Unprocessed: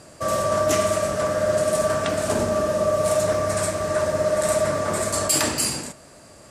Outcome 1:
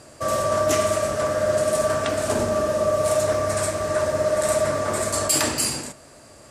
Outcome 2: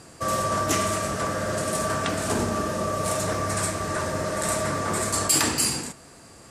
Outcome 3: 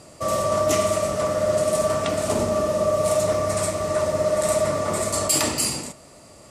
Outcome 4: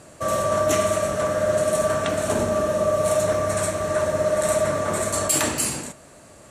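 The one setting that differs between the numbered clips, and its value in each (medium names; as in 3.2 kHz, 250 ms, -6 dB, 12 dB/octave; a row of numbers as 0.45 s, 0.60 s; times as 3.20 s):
band-stop, frequency: 180 Hz, 600 Hz, 1.6 kHz, 4.9 kHz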